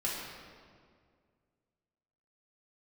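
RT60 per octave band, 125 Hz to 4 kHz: 2.5 s, 2.4 s, 2.2 s, 1.9 s, 1.6 s, 1.3 s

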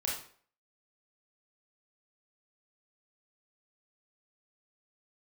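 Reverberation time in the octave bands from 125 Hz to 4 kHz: 0.45 s, 0.45 s, 0.50 s, 0.50 s, 0.45 s, 0.40 s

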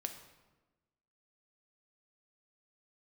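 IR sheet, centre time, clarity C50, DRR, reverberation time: 18 ms, 8.5 dB, 5.5 dB, 1.2 s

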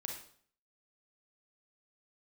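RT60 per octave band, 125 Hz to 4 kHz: 0.65 s, 0.60 s, 0.55 s, 0.55 s, 0.50 s, 0.50 s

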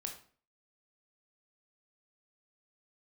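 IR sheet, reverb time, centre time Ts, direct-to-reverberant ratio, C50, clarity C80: 0.45 s, 18 ms, 2.5 dB, 8.0 dB, 12.5 dB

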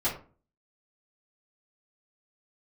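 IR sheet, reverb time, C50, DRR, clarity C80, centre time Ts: 0.40 s, 8.5 dB, -11.5 dB, 13.5 dB, 24 ms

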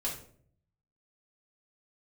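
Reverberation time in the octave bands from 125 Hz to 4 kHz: 1.1 s, 0.80 s, 0.65 s, 0.45 s, 0.40 s, 0.35 s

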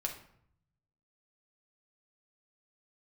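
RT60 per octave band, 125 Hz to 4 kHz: 1.3 s, 0.95 s, 0.65 s, 0.65 s, 0.55 s, 0.45 s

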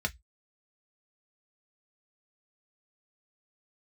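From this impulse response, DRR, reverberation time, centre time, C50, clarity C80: 3.5 dB, 0.10 s, 4 ms, 26.5 dB, 40.0 dB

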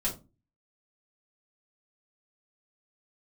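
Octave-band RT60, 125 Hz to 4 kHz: 0.50 s, 0.45 s, 0.30 s, 0.25 s, 0.20 s, 0.20 s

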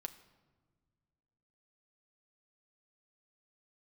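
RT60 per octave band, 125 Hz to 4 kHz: 2.6 s, 2.3 s, 1.6 s, 1.3 s, 1.0 s, 0.80 s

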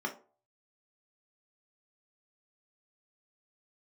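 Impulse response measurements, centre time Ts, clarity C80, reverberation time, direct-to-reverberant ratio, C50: 12 ms, 18.0 dB, 0.40 s, 0.5 dB, 12.5 dB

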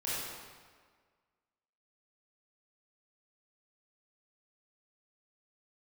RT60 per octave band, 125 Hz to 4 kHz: 1.5 s, 1.6 s, 1.7 s, 1.6 s, 1.5 s, 1.2 s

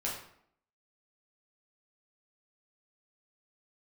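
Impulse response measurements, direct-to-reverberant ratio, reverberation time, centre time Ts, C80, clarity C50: -5.0 dB, 0.65 s, 40 ms, 7.5 dB, 4.0 dB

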